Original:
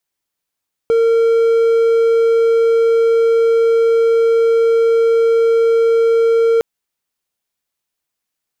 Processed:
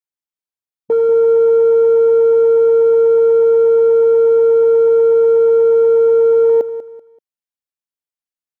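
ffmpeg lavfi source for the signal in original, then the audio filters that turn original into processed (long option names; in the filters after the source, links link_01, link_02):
-f lavfi -i "aevalsrc='0.422*(1-4*abs(mod(458*t+0.25,1)-0.5))':duration=5.71:sample_rate=44100"
-filter_complex "[0:a]afwtdn=0.0891,asplit=2[link_01][link_02];[link_02]aecho=0:1:192|384|576:0.224|0.0672|0.0201[link_03];[link_01][link_03]amix=inputs=2:normalize=0"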